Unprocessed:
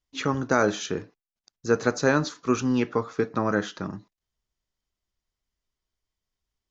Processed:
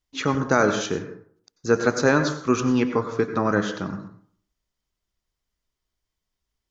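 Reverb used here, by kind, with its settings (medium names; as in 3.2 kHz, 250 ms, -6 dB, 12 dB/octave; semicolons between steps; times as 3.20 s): plate-style reverb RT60 0.54 s, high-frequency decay 0.45×, pre-delay 80 ms, DRR 8.5 dB; trim +2.5 dB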